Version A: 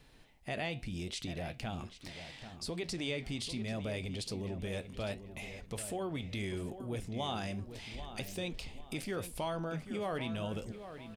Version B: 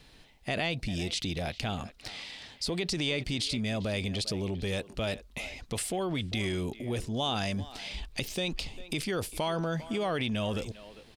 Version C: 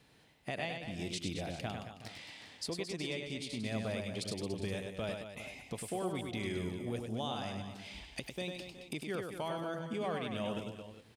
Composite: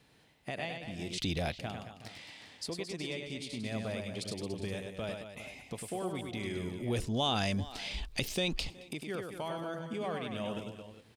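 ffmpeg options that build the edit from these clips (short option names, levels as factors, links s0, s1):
-filter_complex "[1:a]asplit=2[s0][s1];[2:a]asplit=3[s2][s3][s4];[s2]atrim=end=1.182[s5];[s0]atrim=start=1.178:end=1.592[s6];[s3]atrim=start=1.588:end=6.822[s7];[s1]atrim=start=6.818:end=8.702[s8];[s4]atrim=start=8.698[s9];[s5][s6]acrossfade=d=0.004:c1=hsin:c2=hsin[s10];[s10][s7]acrossfade=d=0.004:c1=hsin:c2=hsin[s11];[s11][s8]acrossfade=d=0.004:c1=hsin:c2=hsin[s12];[s12][s9]acrossfade=d=0.004:c1=hsin:c2=hsin"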